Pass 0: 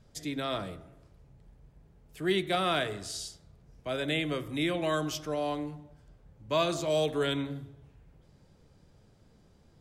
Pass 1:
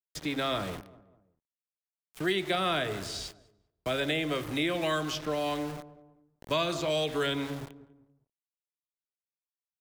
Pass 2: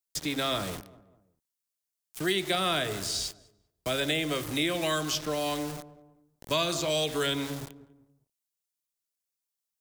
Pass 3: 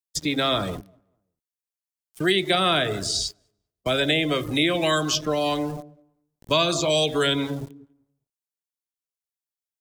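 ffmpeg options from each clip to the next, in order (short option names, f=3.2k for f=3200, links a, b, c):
-filter_complex "[0:a]aeval=exprs='val(0)*gte(abs(val(0)),0.00668)':c=same,asplit=2[a][b];[b]adelay=196,lowpass=f=1.3k:p=1,volume=-20dB,asplit=2[c][d];[d]adelay=196,lowpass=f=1.3k:p=1,volume=0.41,asplit=2[e][f];[f]adelay=196,lowpass=f=1.3k:p=1,volume=0.41[g];[a][c][e][g]amix=inputs=4:normalize=0,acrossover=split=400|1300|4500[h][i][j][k];[h]acompressor=threshold=-42dB:ratio=4[l];[i]acompressor=threshold=-39dB:ratio=4[m];[j]acompressor=threshold=-38dB:ratio=4[n];[k]acompressor=threshold=-54dB:ratio=4[o];[l][m][n][o]amix=inputs=4:normalize=0,volume=6.5dB"
-af "bass=f=250:g=1,treble=f=4k:g=10"
-af "afftdn=nr=15:nf=-39,volume=7dB"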